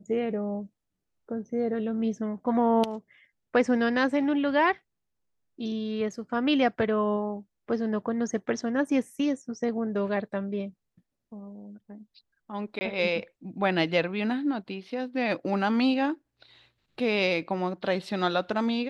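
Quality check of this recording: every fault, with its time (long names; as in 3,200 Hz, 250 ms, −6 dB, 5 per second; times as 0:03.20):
0:12.79–0:12.81: drop-out 20 ms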